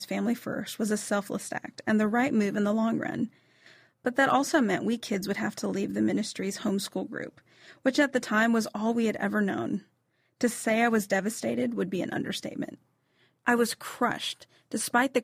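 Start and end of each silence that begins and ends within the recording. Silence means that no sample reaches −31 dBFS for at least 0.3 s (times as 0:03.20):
0:03.25–0:04.06
0:07.27–0:07.86
0:09.77–0:10.41
0:12.69–0:13.47
0:14.32–0:14.74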